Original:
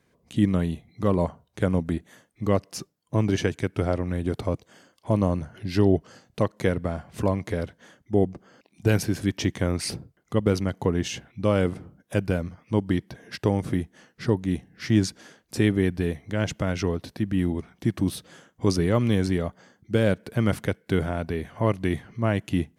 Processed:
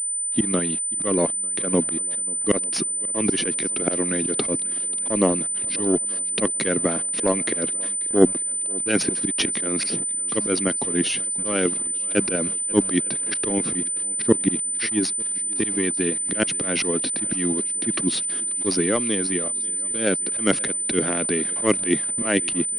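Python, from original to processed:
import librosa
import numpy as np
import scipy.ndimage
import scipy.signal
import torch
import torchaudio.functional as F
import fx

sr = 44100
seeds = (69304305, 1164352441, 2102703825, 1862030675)

p1 = scipy.signal.sosfilt(scipy.signal.butter(4, 220.0, 'highpass', fs=sr, output='sos'), x)
p2 = fx.cheby_harmonics(p1, sr, harmonics=(3,), levels_db=(-18,), full_scale_db=-10.0)
p3 = fx.peak_eq(p2, sr, hz=830.0, db=-13.0, octaves=1.9)
p4 = fx.level_steps(p3, sr, step_db=12)
p5 = p3 + F.gain(torch.from_numpy(p4), -3.0).numpy()
p6 = fx.auto_swell(p5, sr, attack_ms=132.0)
p7 = fx.rider(p6, sr, range_db=5, speed_s=0.5)
p8 = fx.hpss(p7, sr, part='percussive', gain_db=9)
p9 = np.where(np.abs(p8) >= 10.0 ** (-45.5 / 20.0), p8, 0.0)
p10 = fx.echo_swing(p9, sr, ms=896, ratio=1.5, feedback_pct=45, wet_db=-22.0)
p11 = fx.pwm(p10, sr, carrier_hz=9000.0)
y = F.gain(torch.from_numpy(p11), 6.0).numpy()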